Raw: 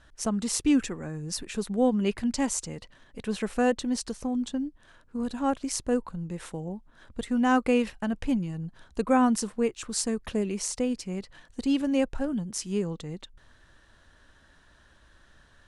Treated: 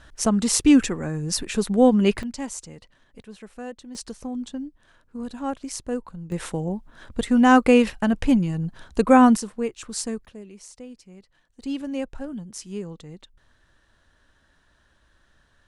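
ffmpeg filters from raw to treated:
-af "asetnsamples=n=441:p=0,asendcmd='2.23 volume volume -4.5dB;3.22 volume volume -12dB;3.95 volume volume -2dB;6.32 volume volume 8dB;9.37 volume volume -0.5dB;10.25 volume volume -13dB;11.62 volume volume -4dB',volume=7.5dB"

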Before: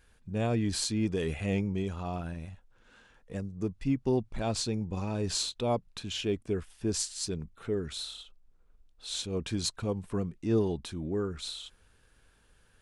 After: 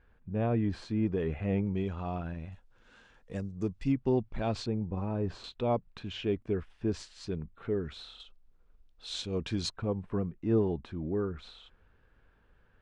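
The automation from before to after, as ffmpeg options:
-af "asetnsamples=n=441:p=0,asendcmd='1.67 lowpass f 2900;2.52 lowpass f 7200;3.92 lowpass f 3100;4.66 lowpass f 1400;5.44 lowpass f 2500;8.2 lowpass f 4800;9.7 lowpass f 1900',lowpass=1.7k"

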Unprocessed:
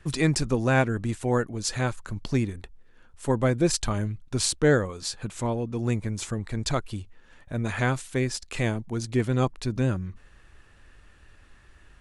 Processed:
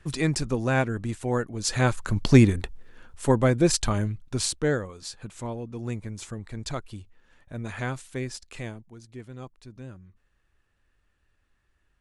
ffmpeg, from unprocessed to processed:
-af "volume=10.5dB,afade=t=in:st=1.52:d=0.94:silence=0.237137,afade=t=out:st=2.46:d=0.98:silence=0.375837,afade=t=out:st=3.96:d=0.83:silence=0.398107,afade=t=out:st=8.34:d=0.62:silence=0.281838"

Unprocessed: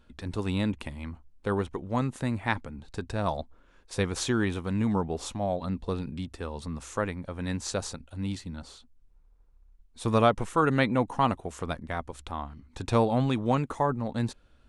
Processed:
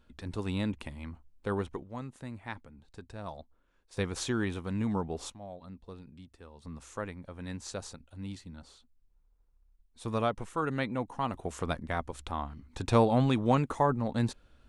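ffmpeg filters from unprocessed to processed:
-af "asetnsamples=n=441:p=0,asendcmd='1.83 volume volume -12.5dB;3.97 volume volume -4.5dB;5.3 volume volume -15.5dB;6.65 volume volume -8dB;11.34 volume volume 0dB',volume=-4dB"

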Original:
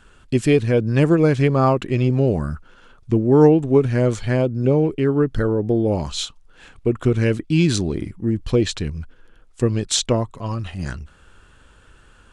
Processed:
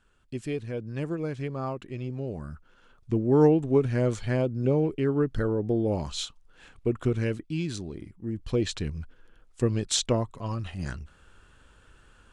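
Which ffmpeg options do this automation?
-af "volume=1.5dB,afade=t=in:st=2.28:d=1.06:silence=0.354813,afade=t=out:st=6.97:d=0.67:silence=0.421697,afade=t=in:st=8.15:d=0.69:silence=0.375837"

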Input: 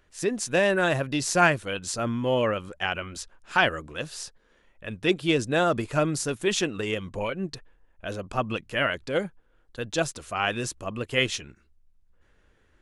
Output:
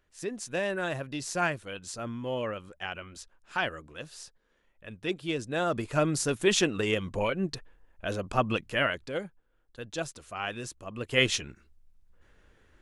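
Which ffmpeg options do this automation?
-af "volume=11dB,afade=t=in:st=5.47:d=0.94:silence=0.334965,afade=t=out:st=8.56:d=0.64:silence=0.354813,afade=t=in:st=10.9:d=0.43:silence=0.316228"

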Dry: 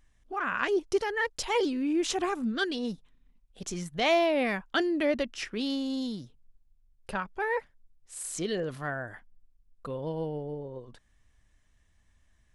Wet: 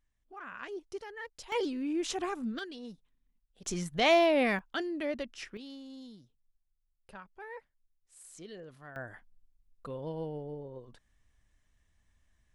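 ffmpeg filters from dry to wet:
-af "asetnsamples=n=441:p=0,asendcmd='1.52 volume volume -5dB;2.59 volume volume -12dB;3.66 volume volume 0.5dB;4.59 volume volume -7.5dB;5.57 volume volume -15.5dB;8.96 volume volume -4.5dB',volume=-14dB"

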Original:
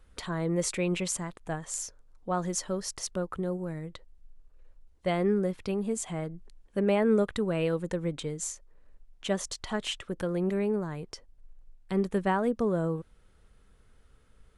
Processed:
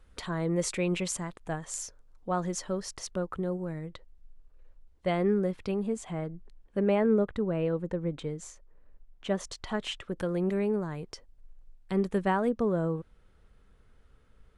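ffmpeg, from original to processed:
-af "asetnsamples=n=441:p=0,asendcmd='2.4 lowpass f 4700;5.87 lowpass f 2400;7.06 lowpass f 1000;8.11 lowpass f 1900;9.4 lowpass f 3700;10.17 lowpass f 8700;12.49 lowpass f 3600',lowpass=f=8.8k:p=1"

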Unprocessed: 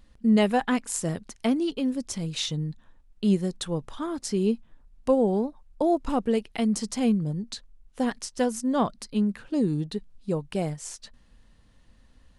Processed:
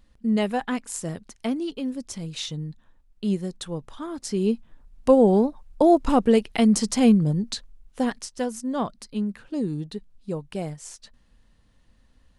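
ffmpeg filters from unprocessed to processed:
-af "volume=6.5dB,afade=t=in:st=4.08:d=1.26:silence=0.354813,afade=t=out:st=7.43:d=0.96:silence=0.354813"

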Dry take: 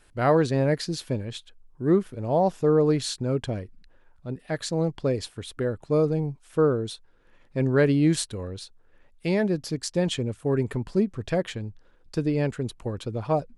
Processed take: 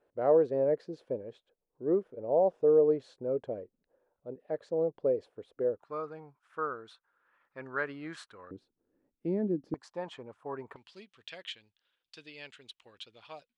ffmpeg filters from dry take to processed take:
-af "asetnsamples=n=441:p=0,asendcmd='5.79 bandpass f 1300;8.51 bandpass f 290;9.74 bandpass f 970;10.76 bandpass f 3200',bandpass=f=510:t=q:w=2.8:csg=0"

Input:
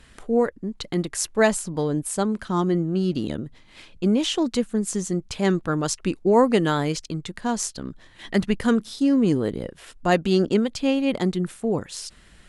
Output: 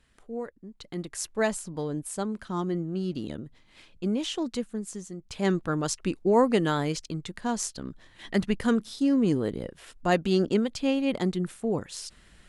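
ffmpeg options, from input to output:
-af "volume=3.5dB,afade=t=in:st=0.71:d=0.48:silence=0.446684,afade=t=out:st=4.54:d=0.63:silence=0.421697,afade=t=in:st=5.17:d=0.29:silence=0.281838"

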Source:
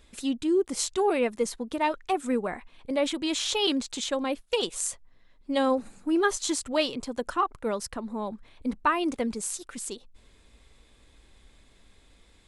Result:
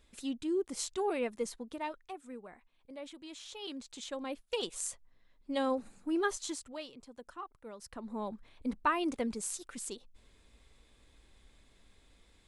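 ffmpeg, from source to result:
-af "volume=16.5dB,afade=t=out:st=1.49:d=0.7:silence=0.281838,afade=t=in:st=3.57:d=1.13:silence=0.251189,afade=t=out:st=6.26:d=0.54:silence=0.281838,afade=t=in:st=7.77:d=0.41:silence=0.223872"

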